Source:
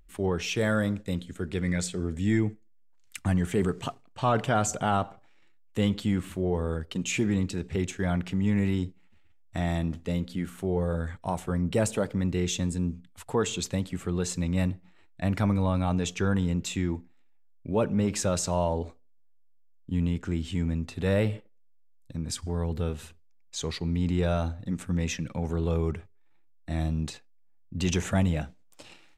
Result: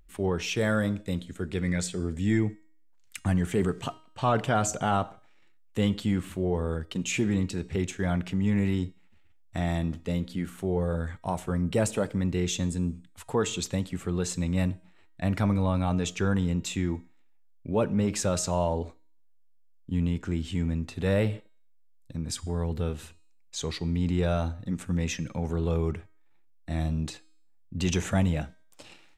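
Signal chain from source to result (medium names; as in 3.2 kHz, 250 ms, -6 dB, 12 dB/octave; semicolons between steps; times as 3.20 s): de-hum 314.9 Hz, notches 32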